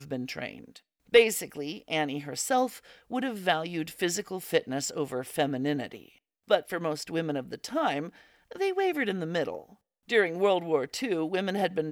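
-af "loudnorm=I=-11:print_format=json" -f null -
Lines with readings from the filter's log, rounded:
"input_i" : "-29.0",
"input_tp" : "-9.7",
"input_lra" : "2.3",
"input_thresh" : "-39.6",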